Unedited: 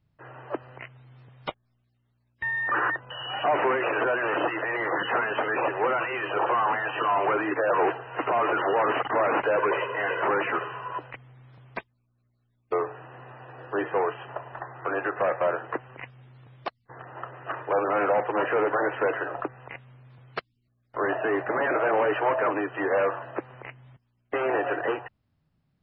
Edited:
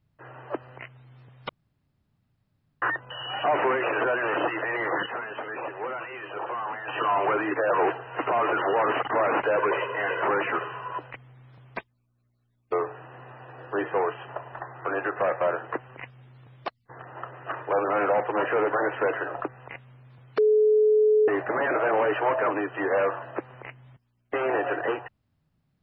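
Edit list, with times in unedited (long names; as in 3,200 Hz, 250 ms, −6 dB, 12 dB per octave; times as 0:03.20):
0:01.49–0:02.82: fill with room tone
0:05.06–0:06.88: clip gain −8 dB
0:20.38–0:21.28: beep over 428 Hz −16 dBFS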